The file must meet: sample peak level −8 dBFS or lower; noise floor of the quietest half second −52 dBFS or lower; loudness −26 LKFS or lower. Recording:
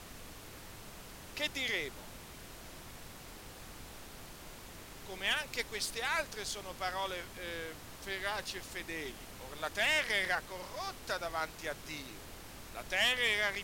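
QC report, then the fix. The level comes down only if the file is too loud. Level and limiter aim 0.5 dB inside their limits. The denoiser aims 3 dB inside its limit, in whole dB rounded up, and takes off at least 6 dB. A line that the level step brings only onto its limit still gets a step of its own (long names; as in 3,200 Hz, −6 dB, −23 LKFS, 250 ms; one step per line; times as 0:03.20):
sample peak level −20.0 dBFS: in spec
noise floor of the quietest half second −50 dBFS: out of spec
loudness −35.5 LKFS: in spec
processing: broadband denoise 6 dB, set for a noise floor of −50 dBFS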